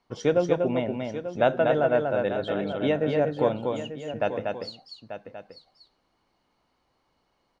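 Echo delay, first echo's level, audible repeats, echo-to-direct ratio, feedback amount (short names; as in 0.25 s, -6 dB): 0.24 s, -4.0 dB, 3, -3.0 dB, no steady repeat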